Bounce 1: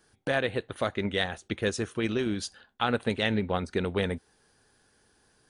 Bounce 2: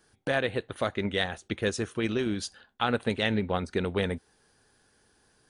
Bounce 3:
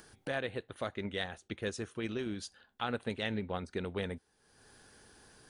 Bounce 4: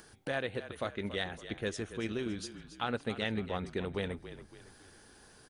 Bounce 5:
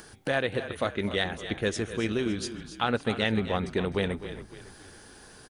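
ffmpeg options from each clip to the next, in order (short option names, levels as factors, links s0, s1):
-af anull
-af "acompressor=mode=upward:threshold=0.0141:ratio=2.5,volume=0.376"
-filter_complex "[0:a]asplit=5[s0][s1][s2][s3][s4];[s1]adelay=280,afreqshift=-34,volume=0.237[s5];[s2]adelay=560,afreqshift=-68,volume=0.105[s6];[s3]adelay=840,afreqshift=-102,volume=0.0457[s7];[s4]adelay=1120,afreqshift=-136,volume=0.0202[s8];[s0][s5][s6][s7][s8]amix=inputs=5:normalize=0,volume=1.12"
-af "aecho=1:1:254:0.178,volume=2.37"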